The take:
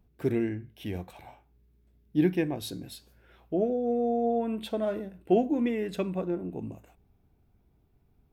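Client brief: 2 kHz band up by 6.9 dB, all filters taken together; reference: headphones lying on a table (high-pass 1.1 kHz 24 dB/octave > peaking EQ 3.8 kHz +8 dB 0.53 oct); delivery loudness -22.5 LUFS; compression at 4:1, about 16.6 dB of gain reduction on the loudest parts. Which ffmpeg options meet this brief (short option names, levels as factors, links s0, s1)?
-af "equalizer=f=2000:t=o:g=7.5,acompressor=threshold=0.0112:ratio=4,highpass=f=1100:w=0.5412,highpass=f=1100:w=1.3066,equalizer=f=3800:t=o:w=0.53:g=8,volume=15"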